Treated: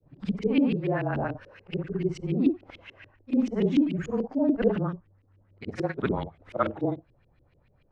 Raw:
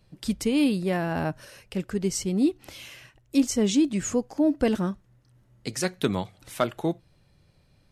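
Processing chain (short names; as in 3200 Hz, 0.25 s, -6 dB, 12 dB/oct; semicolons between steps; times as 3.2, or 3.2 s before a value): short-time reversal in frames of 0.133 s; frequency shift -22 Hz; LFO low-pass saw up 6.9 Hz 310–3000 Hz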